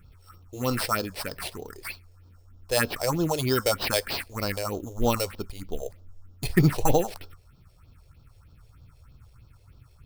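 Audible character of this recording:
aliases and images of a low sample rate 6,800 Hz, jitter 0%
phaser sweep stages 4, 3.2 Hz, lowest notch 200–2,000 Hz

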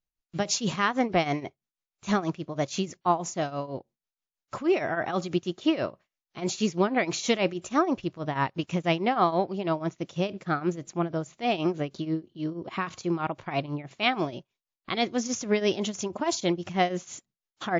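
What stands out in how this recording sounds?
tremolo triangle 6.2 Hz, depth 85%
WMA

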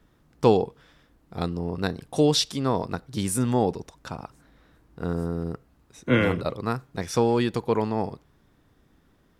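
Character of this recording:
background noise floor −63 dBFS
spectral slope −5.5 dB per octave

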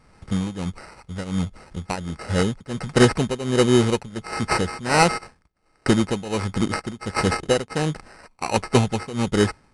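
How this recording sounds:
a buzz of ramps at a fixed pitch in blocks of 8 samples
tremolo triangle 1.4 Hz, depth 90%
aliases and images of a low sample rate 3,400 Hz, jitter 0%
MP3

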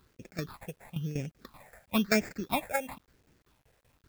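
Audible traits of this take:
aliases and images of a low sample rate 3,000 Hz, jitter 0%
tremolo saw down 5.2 Hz, depth 80%
phaser sweep stages 6, 1 Hz, lowest notch 290–1,100 Hz
a quantiser's noise floor 12 bits, dither none

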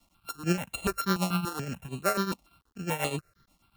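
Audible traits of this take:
a buzz of ramps at a fixed pitch in blocks of 32 samples
tremolo triangle 8.3 Hz, depth 80%
a quantiser's noise floor 12 bits, dither none
notches that jump at a steady rate 6.9 Hz 430–5,400 Hz

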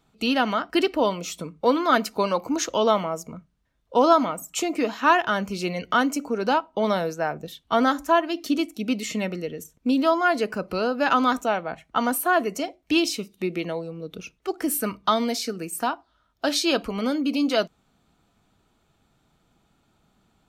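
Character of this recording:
background noise floor −68 dBFS
spectral slope −3.5 dB per octave

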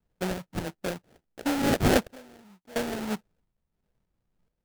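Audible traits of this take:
phaser sweep stages 12, 1.6 Hz, lowest notch 400–1,200 Hz
sample-and-hold tremolo 2.9 Hz, depth 95%
aliases and images of a low sample rate 1,100 Hz, jitter 20%

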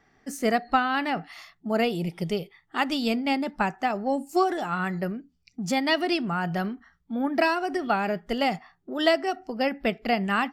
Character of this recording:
background noise floor −69 dBFS
spectral slope −3.0 dB per octave

